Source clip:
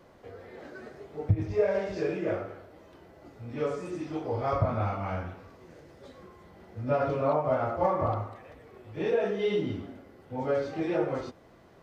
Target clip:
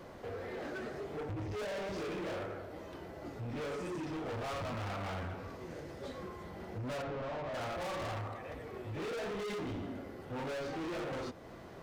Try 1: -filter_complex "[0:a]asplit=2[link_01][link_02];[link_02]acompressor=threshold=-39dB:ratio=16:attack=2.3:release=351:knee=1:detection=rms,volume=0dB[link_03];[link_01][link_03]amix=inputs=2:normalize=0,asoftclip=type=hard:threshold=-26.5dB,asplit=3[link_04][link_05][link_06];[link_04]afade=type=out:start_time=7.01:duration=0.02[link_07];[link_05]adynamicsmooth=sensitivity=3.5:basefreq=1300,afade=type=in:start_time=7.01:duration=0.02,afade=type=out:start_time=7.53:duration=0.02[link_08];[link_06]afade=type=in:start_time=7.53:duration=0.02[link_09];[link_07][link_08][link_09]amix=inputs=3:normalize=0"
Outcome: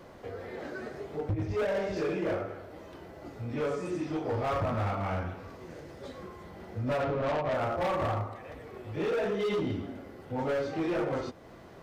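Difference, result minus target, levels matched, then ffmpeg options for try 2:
hard clipping: distortion −6 dB
-filter_complex "[0:a]asplit=2[link_01][link_02];[link_02]acompressor=threshold=-39dB:ratio=16:attack=2.3:release=351:knee=1:detection=rms,volume=0dB[link_03];[link_01][link_03]amix=inputs=2:normalize=0,asoftclip=type=hard:threshold=-37.5dB,asplit=3[link_04][link_05][link_06];[link_04]afade=type=out:start_time=7.01:duration=0.02[link_07];[link_05]adynamicsmooth=sensitivity=3.5:basefreq=1300,afade=type=in:start_time=7.01:duration=0.02,afade=type=out:start_time=7.53:duration=0.02[link_08];[link_06]afade=type=in:start_time=7.53:duration=0.02[link_09];[link_07][link_08][link_09]amix=inputs=3:normalize=0"

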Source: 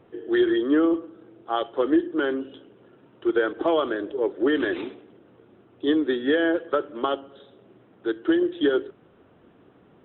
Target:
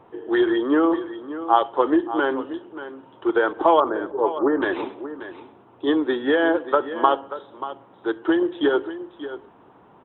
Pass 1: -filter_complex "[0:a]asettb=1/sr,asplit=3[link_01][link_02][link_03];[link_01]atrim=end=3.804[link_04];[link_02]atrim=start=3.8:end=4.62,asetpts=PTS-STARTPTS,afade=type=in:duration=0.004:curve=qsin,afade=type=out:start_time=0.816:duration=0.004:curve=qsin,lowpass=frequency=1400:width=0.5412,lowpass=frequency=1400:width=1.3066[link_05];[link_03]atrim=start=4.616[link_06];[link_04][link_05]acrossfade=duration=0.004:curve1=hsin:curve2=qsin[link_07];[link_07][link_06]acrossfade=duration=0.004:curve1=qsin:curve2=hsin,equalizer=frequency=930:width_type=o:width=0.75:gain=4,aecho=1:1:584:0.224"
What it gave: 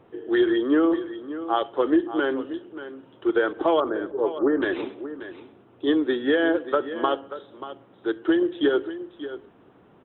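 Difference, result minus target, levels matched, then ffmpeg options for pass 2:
1,000 Hz band −5.0 dB
-filter_complex "[0:a]asettb=1/sr,asplit=3[link_01][link_02][link_03];[link_01]atrim=end=3.804[link_04];[link_02]atrim=start=3.8:end=4.62,asetpts=PTS-STARTPTS,afade=type=in:duration=0.004:curve=qsin,afade=type=out:start_time=0.816:duration=0.004:curve=qsin,lowpass=frequency=1400:width=0.5412,lowpass=frequency=1400:width=1.3066[link_05];[link_03]atrim=start=4.616[link_06];[link_04][link_05]acrossfade=duration=0.004:curve1=hsin:curve2=qsin[link_07];[link_07][link_06]acrossfade=duration=0.004:curve1=qsin:curve2=hsin,equalizer=frequency=930:width_type=o:width=0.75:gain=15,aecho=1:1:584:0.224"

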